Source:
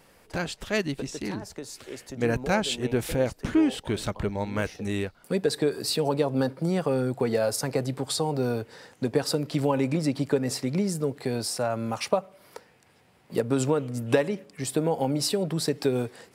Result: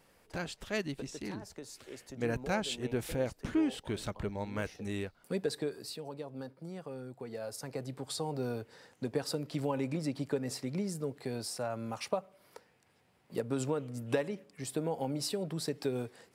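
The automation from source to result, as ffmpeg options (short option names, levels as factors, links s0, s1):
-af "volume=1.12,afade=t=out:st=5.4:d=0.61:silence=0.316228,afade=t=in:st=7.26:d=1.03:silence=0.354813"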